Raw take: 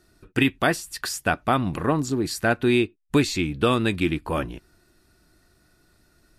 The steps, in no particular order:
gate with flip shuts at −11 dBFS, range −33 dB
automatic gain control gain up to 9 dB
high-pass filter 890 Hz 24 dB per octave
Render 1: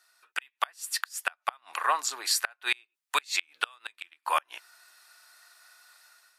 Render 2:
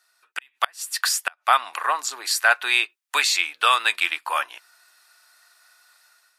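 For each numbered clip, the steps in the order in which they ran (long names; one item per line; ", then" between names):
automatic gain control, then high-pass filter, then gate with flip
high-pass filter, then gate with flip, then automatic gain control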